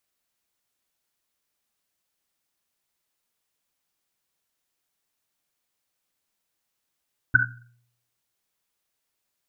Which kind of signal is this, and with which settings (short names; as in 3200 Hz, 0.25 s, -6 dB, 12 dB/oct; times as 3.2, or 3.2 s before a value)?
Risset drum, pitch 120 Hz, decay 0.71 s, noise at 1500 Hz, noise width 140 Hz, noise 70%